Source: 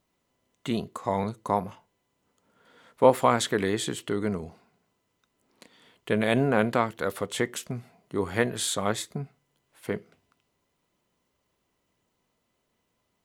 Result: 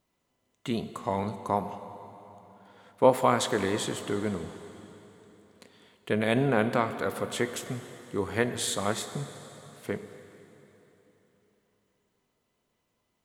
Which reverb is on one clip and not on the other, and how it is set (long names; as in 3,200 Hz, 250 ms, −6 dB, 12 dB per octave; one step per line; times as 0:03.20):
dense smooth reverb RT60 3.7 s, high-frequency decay 0.9×, DRR 9.5 dB
level −2 dB